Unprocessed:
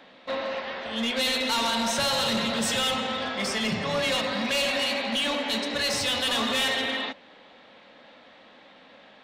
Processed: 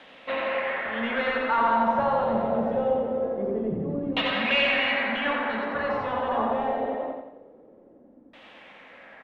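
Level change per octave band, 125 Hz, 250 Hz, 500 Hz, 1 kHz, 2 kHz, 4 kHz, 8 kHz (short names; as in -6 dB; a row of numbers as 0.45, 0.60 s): +0.5 dB, +0.5 dB, +4.0 dB, +5.0 dB, +1.0 dB, -8.5 dB, under -30 dB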